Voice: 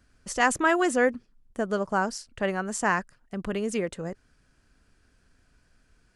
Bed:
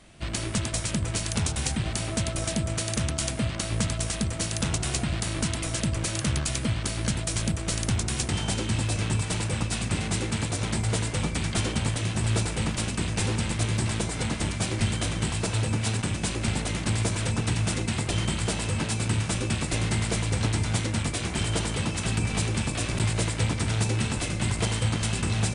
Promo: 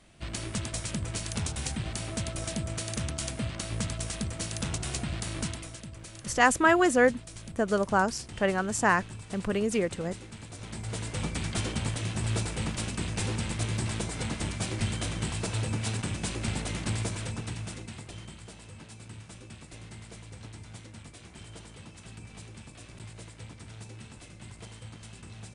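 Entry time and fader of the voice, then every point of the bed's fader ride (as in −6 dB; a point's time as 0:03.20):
6.00 s, +1.0 dB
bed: 0:05.46 −5.5 dB
0:05.82 −16.5 dB
0:10.43 −16.5 dB
0:11.24 −4.5 dB
0:16.91 −4.5 dB
0:18.46 −19.5 dB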